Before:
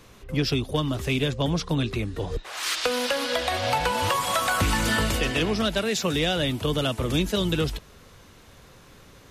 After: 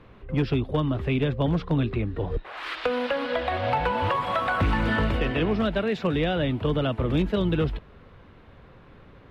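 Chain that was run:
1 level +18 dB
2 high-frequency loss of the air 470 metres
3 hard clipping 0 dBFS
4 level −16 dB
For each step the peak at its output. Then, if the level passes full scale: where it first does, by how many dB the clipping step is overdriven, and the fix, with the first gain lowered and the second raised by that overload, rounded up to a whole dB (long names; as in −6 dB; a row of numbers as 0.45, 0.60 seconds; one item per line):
+6.0, +4.0, 0.0, −16.0 dBFS
step 1, 4.0 dB
step 1 +14 dB, step 4 −12 dB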